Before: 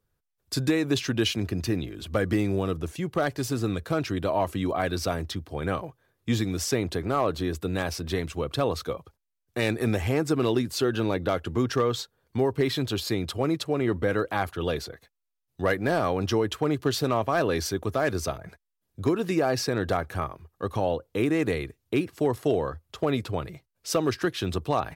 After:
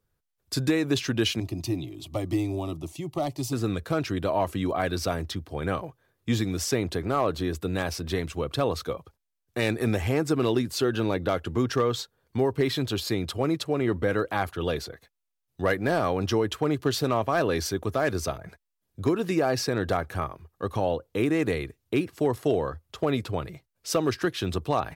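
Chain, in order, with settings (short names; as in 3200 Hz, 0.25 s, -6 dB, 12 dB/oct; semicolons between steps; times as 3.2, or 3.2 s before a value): 1.4–3.53 fixed phaser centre 310 Hz, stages 8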